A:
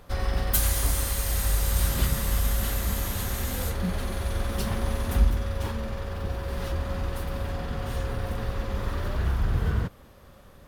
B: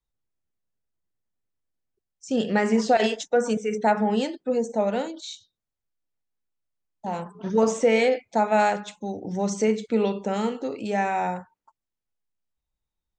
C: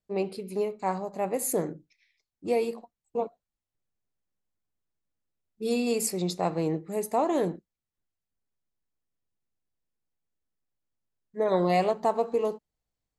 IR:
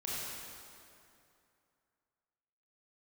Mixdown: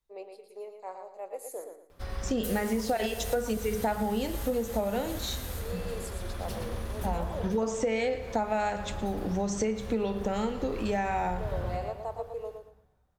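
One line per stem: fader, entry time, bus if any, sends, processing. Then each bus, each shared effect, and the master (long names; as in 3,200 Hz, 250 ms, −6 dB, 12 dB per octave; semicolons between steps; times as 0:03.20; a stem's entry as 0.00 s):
−10.0 dB, 1.90 s, send −11.5 dB, echo send −6.5 dB, no processing
+1.0 dB, 0.00 s, send −21.5 dB, echo send −17 dB, no processing
−6.5 dB, 0.00 s, no send, echo send −6.5 dB, four-pole ladder high-pass 420 Hz, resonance 45%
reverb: on, RT60 2.6 s, pre-delay 23 ms
echo: repeating echo 115 ms, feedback 27%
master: downward compressor 6 to 1, threshold −26 dBFS, peak gain reduction 12 dB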